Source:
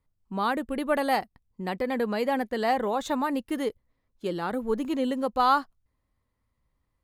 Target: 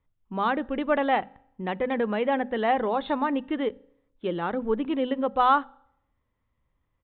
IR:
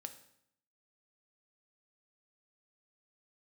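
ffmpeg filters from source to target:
-filter_complex "[0:a]bandreject=f=50:t=h:w=6,bandreject=f=100:t=h:w=6,bandreject=f=150:t=h:w=6,bandreject=f=200:t=h:w=6,bandreject=f=250:t=h:w=6,asplit=2[s0][s1];[1:a]atrim=start_sample=2205[s2];[s1][s2]afir=irnorm=-1:irlink=0,volume=0.335[s3];[s0][s3]amix=inputs=2:normalize=0,aresample=8000,aresample=44100"

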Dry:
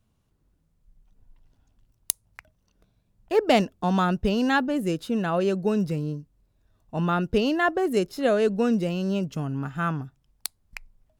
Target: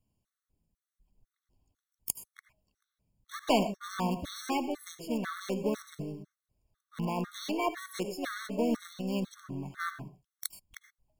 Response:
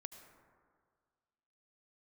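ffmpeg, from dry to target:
-filter_complex "[0:a]acrossover=split=4700[s0][s1];[s1]acontrast=68[s2];[s0][s2]amix=inputs=2:normalize=0,aeval=exprs='0.944*(cos(1*acos(clip(val(0)/0.944,-1,1)))-cos(1*PI/2))+0.15*(cos(2*acos(clip(val(0)/0.944,-1,1)))-cos(2*PI/2))+0.106*(cos(4*acos(clip(val(0)/0.944,-1,1)))-cos(4*PI/2))':c=same,asplit=2[s3][s4];[s4]acrusher=bits=4:dc=4:mix=0:aa=0.000001,volume=0.335[s5];[s3][s5]amix=inputs=2:normalize=0,asplit=2[s6][s7];[s7]asetrate=58866,aresample=44100,atempo=0.749154,volume=0.447[s8];[s6][s8]amix=inputs=2:normalize=0[s9];[1:a]atrim=start_sample=2205,afade=t=out:st=0.18:d=0.01,atrim=end_sample=8379[s10];[s9][s10]afir=irnorm=-1:irlink=0,afftfilt=real='re*gt(sin(2*PI*2*pts/sr)*(1-2*mod(floor(b*sr/1024/1100),2)),0)':imag='im*gt(sin(2*PI*2*pts/sr)*(1-2*mod(floor(b*sr/1024/1100),2)),0)':win_size=1024:overlap=0.75,volume=0.631"

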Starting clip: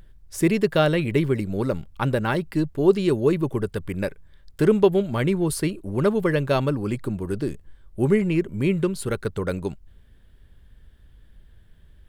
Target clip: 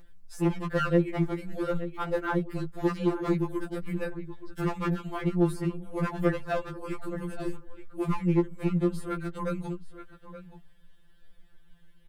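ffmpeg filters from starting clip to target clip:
-filter_complex "[0:a]asplit=2[s0][s1];[s1]adelay=874.6,volume=0.224,highshelf=f=4000:g=-19.7[s2];[s0][s2]amix=inputs=2:normalize=0,acrossover=split=1700[s3][s4];[s4]acompressor=threshold=0.00501:ratio=6[s5];[s3][s5]amix=inputs=2:normalize=0,asoftclip=type=hard:threshold=0.15,equalizer=f=240:w=1.4:g=-9,afftfilt=real='re*2.83*eq(mod(b,8),0)':imag='im*2.83*eq(mod(b,8),0)':win_size=2048:overlap=0.75"

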